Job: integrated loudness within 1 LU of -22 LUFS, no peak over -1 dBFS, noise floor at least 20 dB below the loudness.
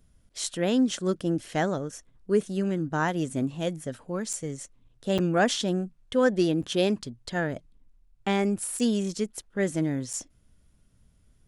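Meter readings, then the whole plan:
dropouts 5; longest dropout 6.5 ms; loudness -28.0 LUFS; peak -10.0 dBFS; loudness target -22.0 LUFS
-> interpolate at 4.33/5.18/6.62/8.79/10.13, 6.5 ms; gain +6 dB

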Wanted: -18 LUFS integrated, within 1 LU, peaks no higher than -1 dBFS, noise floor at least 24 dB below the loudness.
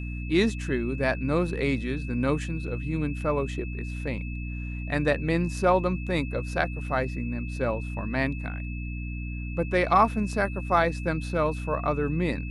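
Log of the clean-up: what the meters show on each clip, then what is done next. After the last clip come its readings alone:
hum 60 Hz; harmonics up to 300 Hz; hum level -31 dBFS; steady tone 2600 Hz; tone level -42 dBFS; loudness -27.5 LUFS; peak -7.5 dBFS; loudness target -18.0 LUFS
-> notches 60/120/180/240/300 Hz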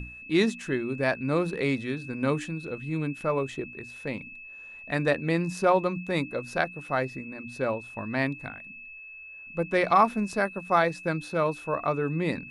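hum none; steady tone 2600 Hz; tone level -42 dBFS
-> notch 2600 Hz, Q 30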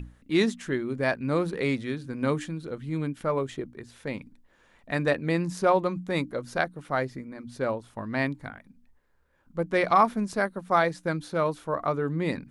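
steady tone none; loudness -28.0 LUFS; peak -8.0 dBFS; loudness target -18.0 LUFS
-> gain +10 dB; limiter -1 dBFS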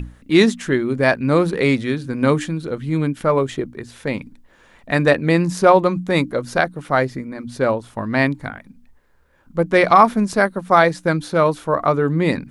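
loudness -18.0 LUFS; peak -1.0 dBFS; noise floor -53 dBFS

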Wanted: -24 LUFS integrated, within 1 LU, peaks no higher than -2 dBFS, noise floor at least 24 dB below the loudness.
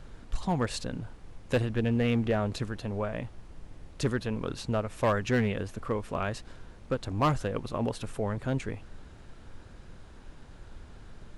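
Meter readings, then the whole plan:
clipped 0.5%; flat tops at -19.0 dBFS; noise floor -50 dBFS; noise floor target -55 dBFS; loudness -31.0 LUFS; peak -19.0 dBFS; loudness target -24.0 LUFS
-> clip repair -19 dBFS; noise print and reduce 6 dB; gain +7 dB

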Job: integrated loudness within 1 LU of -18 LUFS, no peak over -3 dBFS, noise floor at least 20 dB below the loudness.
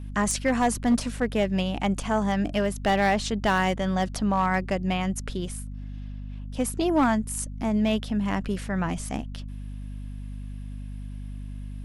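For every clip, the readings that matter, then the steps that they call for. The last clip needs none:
clipped 0.6%; flat tops at -15.5 dBFS; hum 50 Hz; harmonics up to 250 Hz; hum level -33 dBFS; loudness -26.0 LUFS; peak -15.5 dBFS; loudness target -18.0 LUFS
-> clip repair -15.5 dBFS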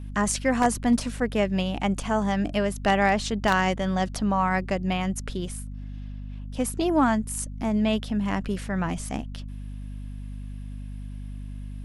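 clipped 0.0%; hum 50 Hz; harmonics up to 250 Hz; hum level -33 dBFS
-> de-hum 50 Hz, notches 5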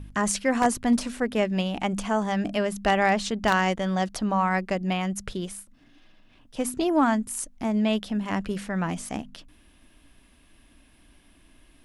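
hum none; loudness -26.0 LUFS; peak -6.0 dBFS; loudness target -18.0 LUFS
-> gain +8 dB; limiter -3 dBFS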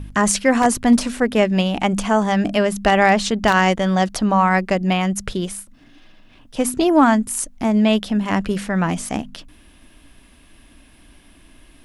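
loudness -18.0 LUFS; peak -3.0 dBFS; noise floor -50 dBFS

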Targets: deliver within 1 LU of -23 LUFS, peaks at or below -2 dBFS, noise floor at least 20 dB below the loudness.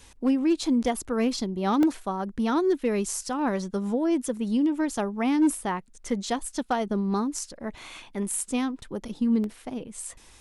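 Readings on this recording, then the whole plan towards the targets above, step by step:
clipped 0.3%; flat tops at -16.0 dBFS; dropouts 2; longest dropout 1.4 ms; loudness -27.0 LUFS; peak -16.0 dBFS; loudness target -23.0 LUFS
-> clip repair -16 dBFS; interpolate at 1.83/9.44, 1.4 ms; gain +4 dB

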